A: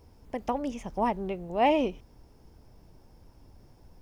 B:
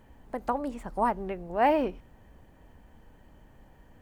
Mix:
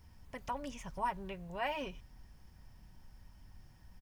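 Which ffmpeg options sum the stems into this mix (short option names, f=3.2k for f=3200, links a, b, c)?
-filter_complex "[0:a]alimiter=limit=-22dB:level=0:latency=1,volume=-2dB[a];[1:a]aecho=1:1:5.4:0.82,adelay=2.1,volume=-8.5dB[b];[a][b]amix=inputs=2:normalize=0,equalizer=f=440:w=0.81:g=-14.5"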